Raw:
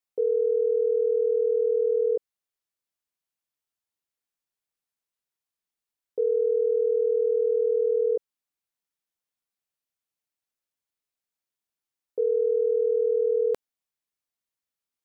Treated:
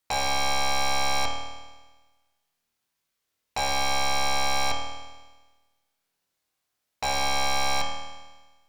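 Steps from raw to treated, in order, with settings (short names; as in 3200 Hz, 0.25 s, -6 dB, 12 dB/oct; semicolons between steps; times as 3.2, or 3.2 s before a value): in parallel at -0.5 dB: limiter -26 dBFS, peak gain reduction 9 dB; on the sum: added harmonics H 4 -13 dB, 7 -8 dB, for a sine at -14.5 dBFS; hard clip -24 dBFS, distortion -7 dB; spring tank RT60 2.2 s, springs 44 ms, chirp 60 ms, DRR -0.5 dB; speed mistake 45 rpm record played at 78 rpm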